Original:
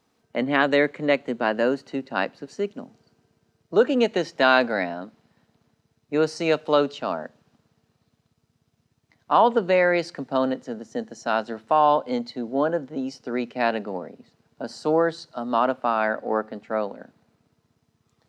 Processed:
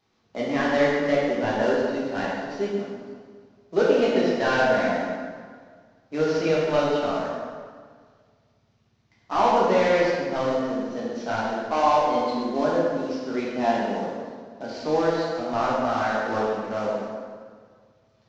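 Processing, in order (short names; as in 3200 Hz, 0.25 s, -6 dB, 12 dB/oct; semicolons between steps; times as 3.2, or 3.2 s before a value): CVSD 32 kbps; plate-style reverb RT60 1.8 s, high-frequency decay 0.7×, DRR -6.5 dB; gain -6 dB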